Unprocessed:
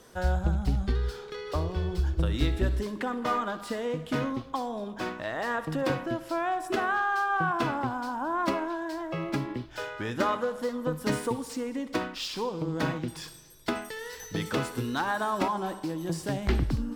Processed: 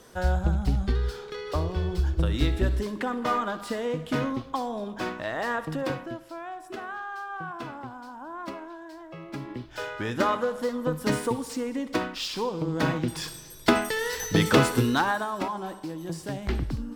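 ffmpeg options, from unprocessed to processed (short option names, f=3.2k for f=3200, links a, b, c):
-af "volume=21dB,afade=t=out:st=5.45:d=0.87:silence=0.281838,afade=t=in:st=9.28:d=0.62:silence=0.266073,afade=t=in:st=12.75:d=1.02:silence=0.421697,afade=t=out:st=14.71:d=0.56:silence=0.237137"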